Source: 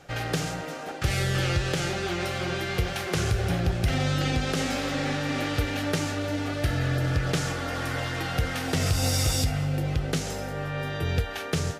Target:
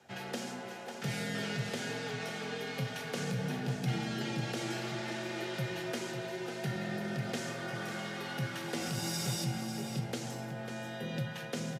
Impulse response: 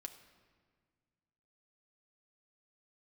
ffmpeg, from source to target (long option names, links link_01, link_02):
-filter_complex "[0:a]aecho=1:1:547:0.355[link_01];[1:a]atrim=start_sample=2205,asetrate=79380,aresample=44100[link_02];[link_01][link_02]afir=irnorm=-1:irlink=0,afreqshift=75"